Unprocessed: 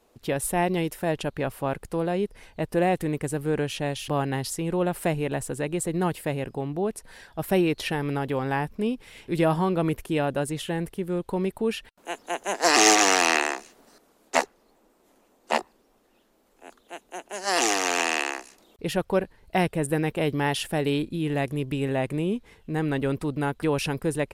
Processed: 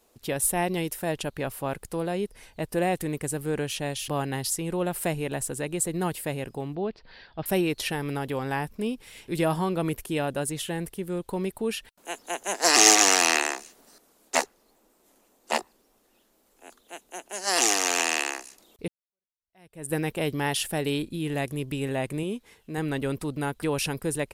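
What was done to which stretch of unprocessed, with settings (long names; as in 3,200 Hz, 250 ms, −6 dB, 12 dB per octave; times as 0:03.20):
0:06.75–0:07.46: Chebyshev low-pass filter 4,700 Hz, order 5
0:18.88–0:19.93: fade in exponential
0:22.23–0:22.78: low-shelf EQ 130 Hz −10 dB
whole clip: high-shelf EQ 4,400 Hz +10 dB; level −3 dB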